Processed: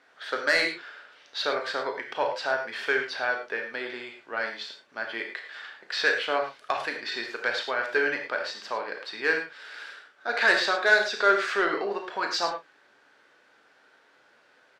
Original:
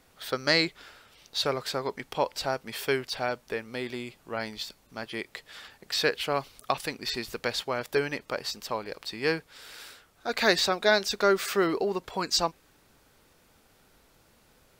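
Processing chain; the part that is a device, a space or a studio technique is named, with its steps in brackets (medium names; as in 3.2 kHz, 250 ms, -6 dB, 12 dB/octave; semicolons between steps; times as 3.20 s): intercom (band-pass 390–4000 Hz; peaking EQ 1.6 kHz +10 dB 0.39 oct; saturation -13.5 dBFS, distortion -16 dB; doubling 35 ms -11.5 dB); gated-style reverb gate 130 ms flat, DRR 3 dB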